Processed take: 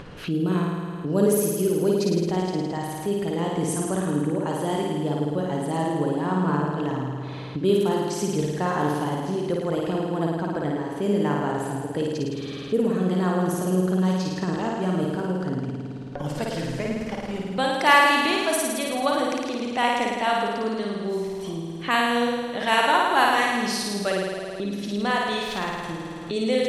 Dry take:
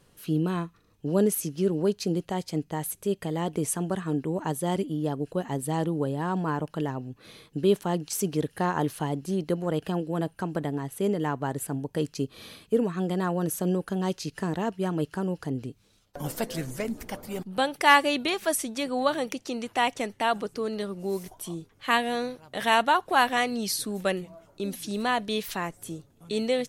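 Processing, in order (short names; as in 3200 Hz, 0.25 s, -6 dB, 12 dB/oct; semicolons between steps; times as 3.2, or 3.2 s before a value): low-pass opened by the level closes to 2800 Hz, open at -20.5 dBFS; flutter echo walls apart 9.3 m, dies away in 1.5 s; upward compressor, threshold -25 dBFS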